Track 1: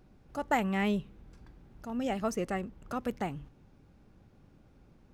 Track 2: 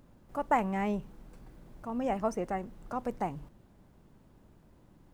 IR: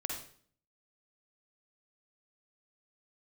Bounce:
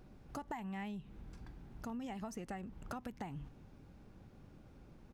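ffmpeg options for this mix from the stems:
-filter_complex "[0:a]acompressor=threshold=-36dB:ratio=10,volume=1.5dB[link_01];[1:a]lowpass=1500,adelay=1.1,volume=-12.5dB[link_02];[link_01][link_02]amix=inputs=2:normalize=0,acompressor=threshold=-41dB:ratio=4"

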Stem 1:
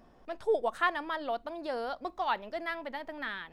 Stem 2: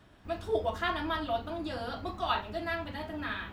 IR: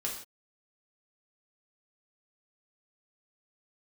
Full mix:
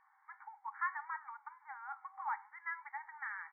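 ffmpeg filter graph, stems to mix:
-filter_complex "[0:a]acompressor=threshold=-37dB:ratio=1.5,flanger=delay=8.9:depth=2.7:regen=-84:speed=1.7:shape=triangular,volume=1.5dB,asplit=2[link_01][link_02];[1:a]volume=-1,adelay=0.3,volume=-10.5dB[link_03];[link_02]apad=whole_len=155495[link_04];[link_03][link_04]sidechaincompress=threshold=-48dB:ratio=8:attack=41:release=210[link_05];[link_01][link_05]amix=inputs=2:normalize=0,afftfilt=real='re*between(b*sr/4096,770,2300)':imag='im*between(b*sr/4096,770,2300)':win_size=4096:overlap=0.75"

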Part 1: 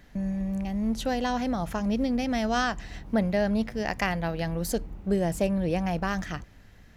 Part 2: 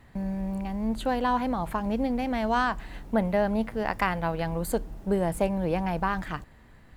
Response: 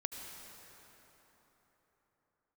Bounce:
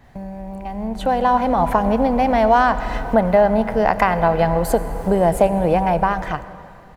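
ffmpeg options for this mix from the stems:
-filter_complex "[0:a]acompressor=threshold=-33dB:ratio=6,volume=-4.5dB,asplit=2[link_01][link_02];[link_02]volume=-11dB[link_03];[1:a]acompressor=threshold=-31dB:ratio=2.5,adynamicequalizer=threshold=0.00126:dfrequency=3300:dqfactor=0.7:tfrequency=3300:tqfactor=0.7:attack=5:release=100:ratio=0.375:range=3:mode=cutabove:tftype=highshelf,adelay=2.3,volume=-1dB,asplit=3[link_04][link_05][link_06];[link_05]volume=-4dB[link_07];[link_06]apad=whole_len=307283[link_08];[link_01][link_08]sidechaincompress=threshold=-40dB:ratio=8:attack=16:release=390[link_09];[2:a]atrim=start_sample=2205[link_10];[link_03][link_07]amix=inputs=2:normalize=0[link_11];[link_11][link_10]afir=irnorm=-1:irlink=0[link_12];[link_09][link_04][link_12]amix=inputs=3:normalize=0,equalizer=frequency=730:width=2.3:gain=8,dynaudnorm=framelen=320:gausssize=7:maxgain=13dB"

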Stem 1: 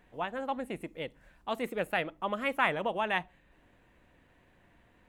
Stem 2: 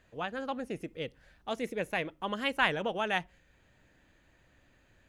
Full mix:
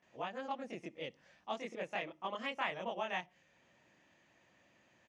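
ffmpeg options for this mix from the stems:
ffmpeg -i stem1.wav -i stem2.wav -filter_complex "[0:a]volume=-9.5dB[link_01];[1:a]acompressor=threshold=-37dB:ratio=5,volume=-1,adelay=24,volume=0dB[link_02];[link_01][link_02]amix=inputs=2:normalize=0,highpass=210,equalizer=frequency=280:width_type=q:width=4:gain=-5,equalizer=frequency=440:width_type=q:width=4:gain=-6,equalizer=frequency=1500:width_type=q:width=4:gain=-7,equalizer=frequency=4000:width_type=q:width=4:gain=-5,equalizer=frequency=5800:width_type=q:width=4:gain=5,lowpass=frequency=6700:width=0.5412,lowpass=frequency=6700:width=1.3066" out.wav

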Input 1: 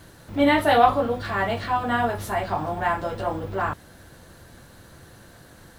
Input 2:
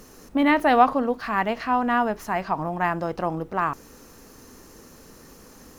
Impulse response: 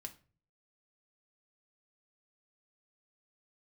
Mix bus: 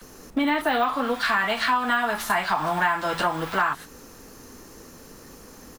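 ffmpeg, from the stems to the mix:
-filter_complex "[0:a]deesser=0.85,highpass=frequency=950:width=0.5412,highpass=frequency=950:width=1.3066,dynaudnorm=framelen=110:gausssize=13:maxgain=14dB,volume=2dB[link_01];[1:a]bandreject=frequency=55.62:width_type=h:width=4,bandreject=frequency=111.24:width_type=h:width=4,bandreject=frequency=166.86:width_type=h:width=4,bandreject=frequency=222.48:width_type=h:width=4,volume=-1,adelay=15,volume=2.5dB,asplit=2[link_02][link_03];[link_03]apad=whole_len=255005[link_04];[link_01][link_04]sidechaingate=range=-33dB:threshold=-35dB:ratio=16:detection=peak[link_05];[link_05][link_02]amix=inputs=2:normalize=0,acompressor=threshold=-20dB:ratio=6"

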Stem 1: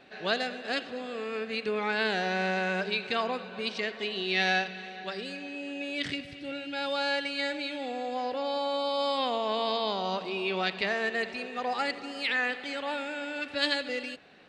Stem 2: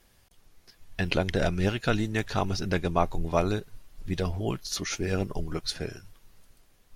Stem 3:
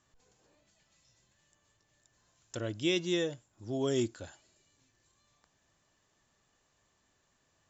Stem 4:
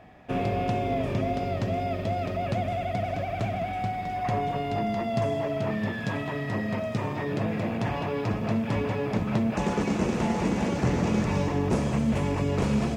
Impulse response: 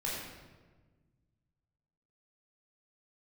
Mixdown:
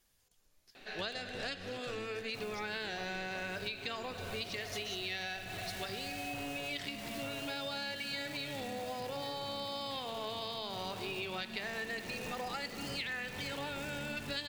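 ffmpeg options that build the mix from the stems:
-filter_complex "[0:a]adelay=750,volume=-3dB,asplit=2[link_01][link_02];[link_02]volume=-16.5dB[link_03];[1:a]asoftclip=type=hard:threshold=-22.5dB,volume=-16dB[link_04];[2:a]volume=-16dB,asplit=2[link_05][link_06];[3:a]bandreject=frequency=1200:width=5.8,asoftclip=type=tanh:threshold=-27.5dB,acrusher=bits=7:dc=4:mix=0:aa=0.000001,adelay=2050,volume=-11.5dB,asplit=2[link_07][link_08];[link_08]volume=-11.5dB[link_09];[link_06]apad=whole_len=662260[link_10];[link_07][link_10]sidechaincompress=threshold=-58dB:ratio=8:attack=16:release=361[link_11];[4:a]atrim=start_sample=2205[link_12];[link_03][link_09]amix=inputs=2:normalize=0[link_13];[link_13][link_12]afir=irnorm=-1:irlink=0[link_14];[link_01][link_04][link_05][link_11][link_14]amix=inputs=5:normalize=0,highshelf=frequency=2700:gain=9,acompressor=threshold=-37dB:ratio=6"

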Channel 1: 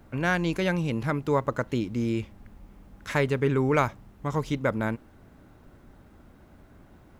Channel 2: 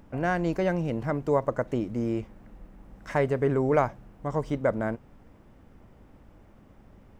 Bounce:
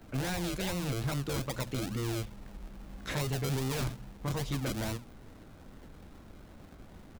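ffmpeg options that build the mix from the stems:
ffmpeg -i stem1.wav -i stem2.wav -filter_complex "[0:a]equalizer=frequency=3800:width_type=o:width=0.39:gain=5.5,volume=-2.5dB[link_01];[1:a]bandreject=frequency=60:width_type=h:width=6,bandreject=frequency=120:width_type=h:width=6,bandreject=frequency=180:width_type=h:width=6,bandreject=frequency=240:width_type=h:width=6,acrusher=samples=38:mix=1:aa=0.000001:lfo=1:lforange=22.8:lforate=2.4,adelay=15,volume=0.5dB[link_02];[link_01][link_02]amix=inputs=2:normalize=0,asoftclip=type=tanh:threshold=-24.5dB,acrossover=split=170|3000[link_03][link_04][link_05];[link_04]acompressor=threshold=-35dB:ratio=6[link_06];[link_03][link_06][link_05]amix=inputs=3:normalize=0" out.wav

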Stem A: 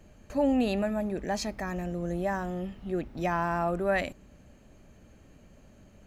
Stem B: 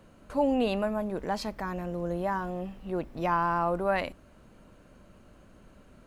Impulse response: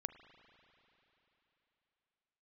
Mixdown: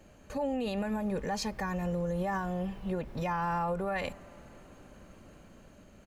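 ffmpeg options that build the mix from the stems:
-filter_complex "[0:a]lowshelf=frequency=170:gain=-7,volume=0.5dB[link_01];[1:a]dynaudnorm=framelen=450:gausssize=5:maxgain=8dB,volume=-1,adelay=3.6,volume=-9dB,asplit=2[link_02][link_03];[link_03]volume=-10dB[link_04];[2:a]atrim=start_sample=2205[link_05];[link_04][link_05]afir=irnorm=-1:irlink=0[link_06];[link_01][link_02][link_06]amix=inputs=3:normalize=0,alimiter=level_in=0.5dB:limit=-24dB:level=0:latency=1:release=95,volume=-0.5dB"

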